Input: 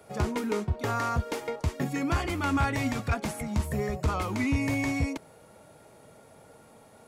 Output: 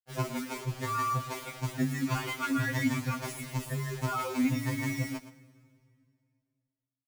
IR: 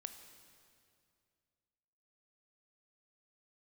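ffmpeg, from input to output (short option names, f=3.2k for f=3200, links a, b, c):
-filter_complex "[0:a]acrusher=bits=6:mix=0:aa=0.000001,asplit=2[a][b];[1:a]atrim=start_sample=2205,adelay=116[c];[b][c]afir=irnorm=-1:irlink=0,volume=-8.5dB[d];[a][d]amix=inputs=2:normalize=0,afftfilt=real='re*2.45*eq(mod(b,6),0)':imag='im*2.45*eq(mod(b,6),0)':win_size=2048:overlap=0.75"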